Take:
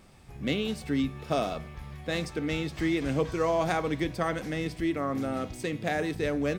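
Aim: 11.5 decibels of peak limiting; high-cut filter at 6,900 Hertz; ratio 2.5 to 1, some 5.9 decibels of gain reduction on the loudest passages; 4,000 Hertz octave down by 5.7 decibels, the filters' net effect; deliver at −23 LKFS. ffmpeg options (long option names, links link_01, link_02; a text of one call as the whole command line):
ffmpeg -i in.wav -af "lowpass=6900,equalizer=frequency=4000:width_type=o:gain=-7,acompressor=threshold=-32dB:ratio=2.5,volume=17dB,alimiter=limit=-13.5dB:level=0:latency=1" out.wav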